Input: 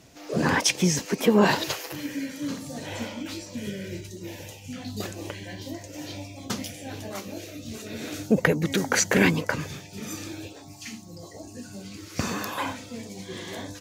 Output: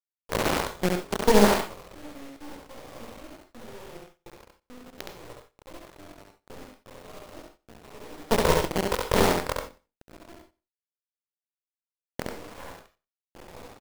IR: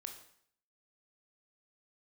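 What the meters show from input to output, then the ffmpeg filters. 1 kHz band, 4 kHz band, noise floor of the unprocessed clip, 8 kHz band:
+2.0 dB, −3.5 dB, −45 dBFS, −7.0 dB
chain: -filter_complex "[0:a]bandpass=frequency=530:width_type=q:width=1.6:csg=0,flanger=delay=16.5:depth=7.1:speed=0.37,aeval=exprs='0.2*(cos(1*acos(clip(val(0)/0.2,-1,1)))-cos(1*PI/2))+0.0891*(cos(4*acos(clip(val(0)/0.2,-1,1)))-cos(4*PI/2))':channel_layout=same,afwtdn=0.0178,acrusher=bits=5:dc=4:mix=0:aa=0.000001,aecho=1:1:93|186:0.0794|0.0151,asplit=2[link_01][link_02];[1:a]atrim=start_sample=2205,atrim=end_sample=3969,adelay=68[link_03];[link_02][link_03]afir=irnorm=-1:irlink=0,volume=2.5dB[link_04];[link_01][link_04]amix=inputs=2:normalize=0,volume=3dB"

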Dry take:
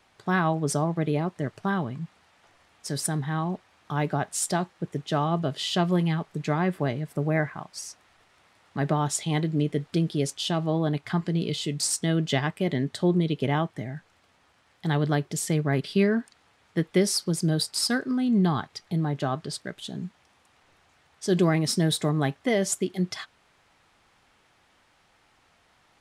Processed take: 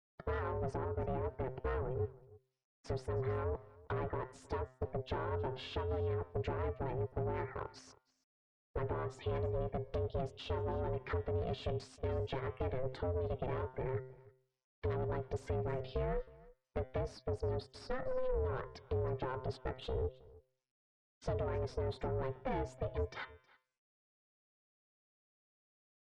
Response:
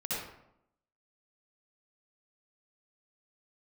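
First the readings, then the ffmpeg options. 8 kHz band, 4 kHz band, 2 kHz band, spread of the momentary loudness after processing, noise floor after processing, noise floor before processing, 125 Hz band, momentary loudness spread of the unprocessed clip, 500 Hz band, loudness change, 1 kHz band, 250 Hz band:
below −30 dB, −21.0 dB, −16.0 dB, 6 LU, below −85 dBFS, −64 dBFS, −12.0 dB, 11 LU, −7.5 dB, −13.0 dB, −11.5 dB, −21.5 dB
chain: -af "anlmdn=0.00631,highpass=100,acompressor=threshold=-34dB:ratio=16,afftfilt=real='re*gte(hypot(re,im),0.00316)':imag='im*gte(hypot(re,im),0.00316)':win_size=1024:overlap=0.75,bandreject=frequency=128.6:width_type=h:width=4,bandreject=frequency=257.2:width_type=h:width=4,bandreject=frequency=385.8:width_type=h:width=4,bandreject=frequency=514.4:width_type=h:width=4,bandreject=frequency=643:width_type=h:width=4,bandreject=frequency=771.6:width_type=h:width=4,bandreject=frequency=900.2:width_type=h:width=4,bandreject=frequency=1028.8:width_type=h:width=4,bandreject=frequency=1157.4:width_type=h:width=4,bandreject=frequency=1286:width_type=h:width=4,bandreject=frequency=1414.6:width_type=h:width=4,bandreject=frequency=1543.2:width_type=h:width=4,bandreject=frequency=1671.8:width_type=h:width=4,bandreject=frequency=1800.4:width_type=h:width=4,bandreject=frequency=1929:width_type=h:width=4,bandreject=frequency=2057.6:width_type=h:width=4,bandreject=frequency=2186.2:width_type=h:width=4,bandreject=frequency=2314.8:width_type=h:width=4,bandreject=frequency=2443.4:width_type=h:width=4,bandreject=frequency=2572:width_type=h:width=4,bandreject=frequency=2700.6:width_type=h:width=4,bandreject=frequency=2829.2:width_type=h:width=4,bandreject=frequency=2957.8:width_type=h:width=4,bandreject=frequency=3086.4:width_type=h:width=4,bandreject=frequency=3215:width_type=h:width=4,bandreject=frequency=3343.6:width_type=h:width=4,bandreject=frequency=3472.2:width_type=h:width=4,asoftclip=type=tanh:threshold=-36.5dB,aeval=exprs='0.015*(cos(1*acos(clip(val(0)/0.015,-1,1)))-cos(1*PI/2))+0.000237*(cos(4*acos(clip(val(0)/0.015,-1,1)))-cos(4*PI/2))+0.000531*(cos(5*acos(clip(val(0)/0.015,-1,1)))-cos(5*PI/2))':channel_layout=same,adynamicsmooth=sensitivity=1.5:basefreq=1700,aeval=exprs='val(0)*sin(2*PI*260*n/s)':channel_layout=same,aecho=1:1:317:0.075,volume=9dB" -ar 44100 -c:a sbc -b:a 128k

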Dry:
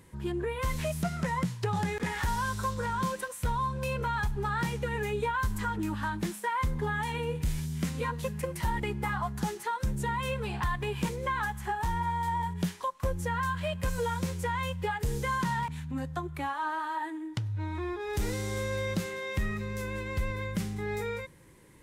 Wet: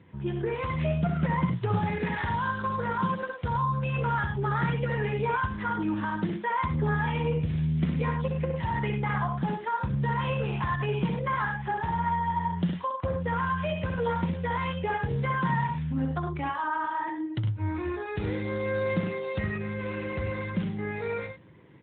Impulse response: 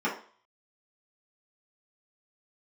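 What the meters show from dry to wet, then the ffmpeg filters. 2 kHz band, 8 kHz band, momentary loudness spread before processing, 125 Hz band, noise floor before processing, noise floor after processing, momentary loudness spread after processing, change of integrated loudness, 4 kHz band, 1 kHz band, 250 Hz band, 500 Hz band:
+2.0 dB, below −35 dB, 4 LU, +4.5 dB, −44 dBFS, −38 dBFS, 5 LU, +3.0 dB, −2.0 dB, +3.0 dB, +5.0 dB, +3.0 dB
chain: -af "lowshelf=frequency=160:gain=3,aecho=1:1:64.14|102:0.562|0.398,volume=1.5dB" -ar 8000 -c:a libopencore_amrnb -b:a 12200

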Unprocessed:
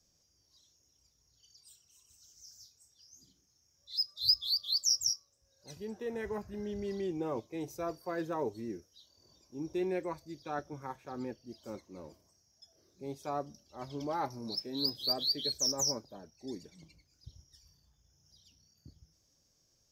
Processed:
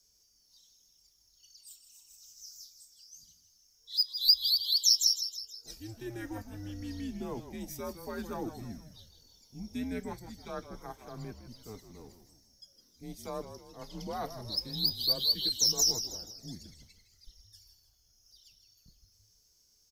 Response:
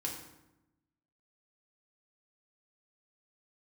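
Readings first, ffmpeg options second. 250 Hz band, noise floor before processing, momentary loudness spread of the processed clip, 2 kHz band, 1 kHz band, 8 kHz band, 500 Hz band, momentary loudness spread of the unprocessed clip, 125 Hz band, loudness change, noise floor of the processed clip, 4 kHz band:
−1.0 dB, −73 dBFS, 24 LU, −1.5 dB, −4.0 dB, +4.5 dB, −5.0 dB, 19 LU, +3.0 dB, +4.5 dB, −68 dBFS, +5.0 dB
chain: -filter_complex "[0:a]crystalizer=i=2.5:c=0,asplit=6[link_01][link_02][link_03][link_04][link_05][link_06];[link_02]adelay=159,afreqshift=-69,volume=-10.5dB[link_07];[link_03]adelay=318,afreqshift=-138,volume=-16.7dB[link_08];[link_04]adelay=477,afreqshift=-207,volume=-22.9dB[link_09];[link_05]adelay=636,afreqshift=-276,volume=-29.1dB[link_10];[link_06]adelay=795,afreqshift=-345,volume=-35.3dB[link_11];[link_01][link_07][link_08][link_09][link_10][link_11]amix=inputs=6:normalize=0,afreqshift=-110,volume=-3dB"

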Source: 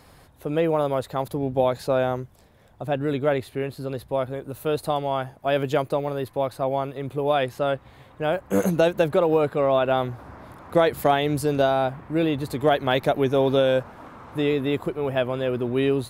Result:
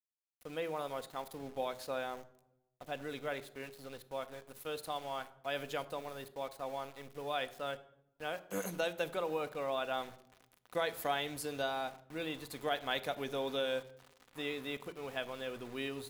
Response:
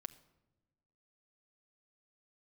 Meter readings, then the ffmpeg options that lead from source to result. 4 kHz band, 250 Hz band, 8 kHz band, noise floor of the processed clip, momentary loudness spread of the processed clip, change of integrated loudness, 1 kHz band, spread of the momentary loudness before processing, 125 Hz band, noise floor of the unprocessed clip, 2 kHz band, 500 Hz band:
−8.0 dB, −19.0 dB, −7.0 dB, −75 dBFS, 10 LU, −15.5 dB, −14.0 dB, 10 LU, −23.0 dB, −53 dBFS, −9.5 dB, −17.0 dB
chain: -filter_complex "[0:a]tiltshelf=frequency=870:gain=-7,aeval=exprs='val(0)*gte(abs(val(0)),0.0158)':channel_layout=same[link_01];[1:a]atrim=start_sample=2205,asetrate=61740,aresample=44100[link_02];[link_01][link_02]afir=irnorm=-1:irlink=0,volume=-6.5dB"

